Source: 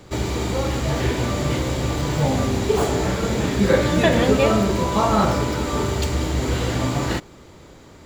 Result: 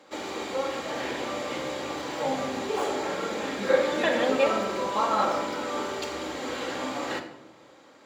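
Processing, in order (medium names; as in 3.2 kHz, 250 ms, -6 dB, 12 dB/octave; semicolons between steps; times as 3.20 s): high-pass 450 Hz 12 dB/octave; treble shelf 6.5 kHz -11.5 dB; simulated room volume 3000 m³, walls furnished, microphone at 2.2 m; trim -5 dB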